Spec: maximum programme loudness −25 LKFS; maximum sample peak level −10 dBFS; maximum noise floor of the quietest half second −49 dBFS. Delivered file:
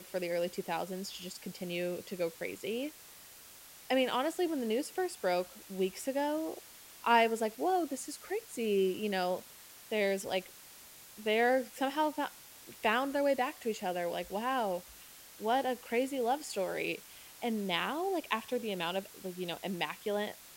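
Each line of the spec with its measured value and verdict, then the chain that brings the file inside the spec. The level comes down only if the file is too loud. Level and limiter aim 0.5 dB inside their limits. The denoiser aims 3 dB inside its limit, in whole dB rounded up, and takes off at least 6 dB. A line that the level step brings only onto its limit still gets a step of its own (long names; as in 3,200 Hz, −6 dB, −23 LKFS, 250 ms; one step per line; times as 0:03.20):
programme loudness −34.0 LKFS: in spec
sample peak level −13.5 dBFS: in spec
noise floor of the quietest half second −54 dBFS: in spec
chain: no processing needed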